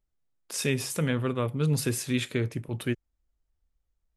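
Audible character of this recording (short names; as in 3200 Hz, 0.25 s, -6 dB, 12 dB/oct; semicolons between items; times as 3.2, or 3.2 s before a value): noise floor -80 dBFS; spectral tilt -5.0 dB/oct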